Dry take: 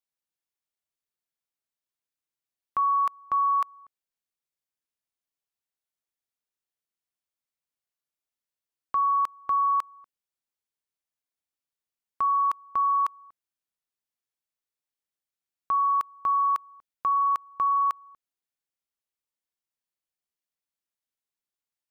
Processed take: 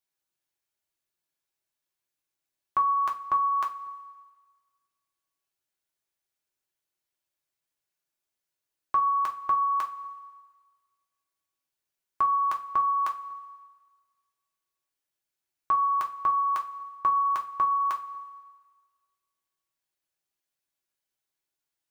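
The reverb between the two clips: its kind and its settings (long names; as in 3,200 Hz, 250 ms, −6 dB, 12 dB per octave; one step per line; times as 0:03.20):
coupled-rooms reverb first 0.24 s, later 1.6 s, from −19 dB, DRR 0 dB
level +1.5 dB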